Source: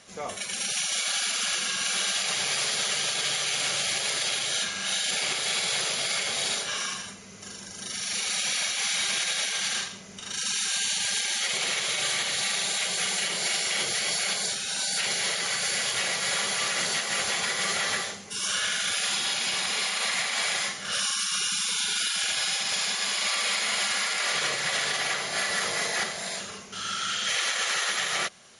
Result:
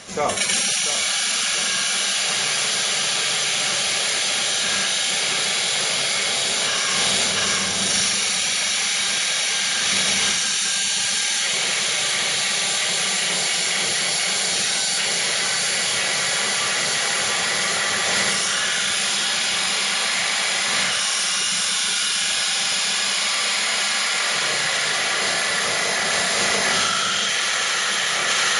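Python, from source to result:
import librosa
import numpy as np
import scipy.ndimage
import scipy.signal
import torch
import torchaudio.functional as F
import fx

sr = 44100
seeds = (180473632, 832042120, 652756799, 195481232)

p1 = fx.echo_feedback(x, sr, ms=689, feedback_pct=56, wet_db=-6)
p2 = fx.over_compress(p1, sr, threshold_db=-32.0, ratio=-0.5)
p3 = p1 + F.gain(torch.from_numpy(p2), 2.0).numpy()
y = F.gain(torch.from_numpy(p3), 2.0).numpy()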